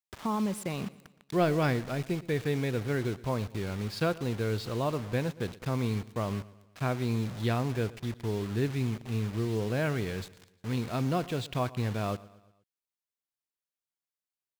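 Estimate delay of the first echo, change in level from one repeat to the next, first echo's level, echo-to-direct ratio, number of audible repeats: 118 ms, −6.0 dB, −20.0 dB, −19.0 dB, 3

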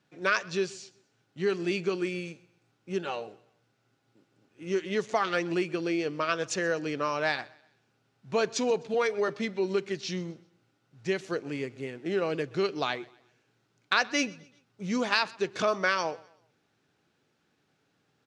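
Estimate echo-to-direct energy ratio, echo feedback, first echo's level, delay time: −22.5 dB, 38%, −23.0 dB, 127 ms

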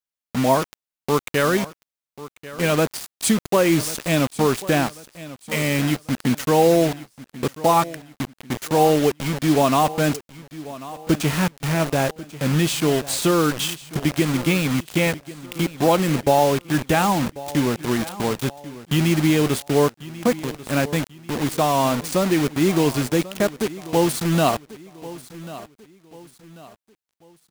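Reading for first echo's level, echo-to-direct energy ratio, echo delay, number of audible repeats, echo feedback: −17.0 dB, −16.5 dB, 1,091 ms, 3, 38%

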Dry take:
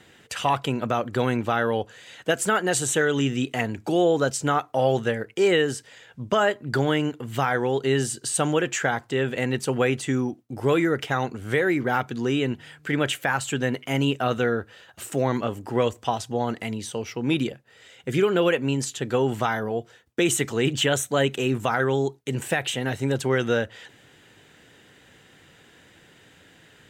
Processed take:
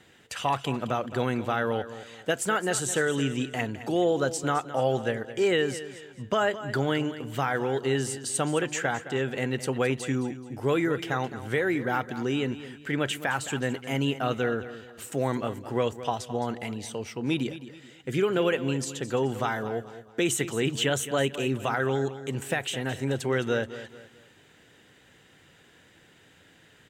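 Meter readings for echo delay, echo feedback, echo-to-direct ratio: 215 ms, 36%, −13.0 dB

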